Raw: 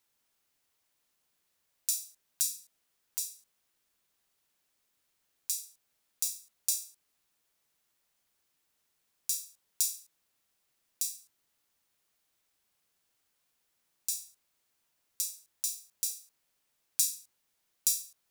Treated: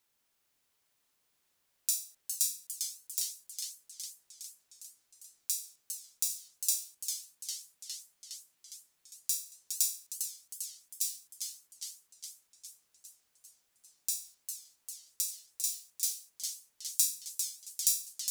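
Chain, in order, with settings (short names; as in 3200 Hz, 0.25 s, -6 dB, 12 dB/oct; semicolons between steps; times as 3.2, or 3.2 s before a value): warbling echo 0.405 s, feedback 70%, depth 210 cents, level -6.5 dB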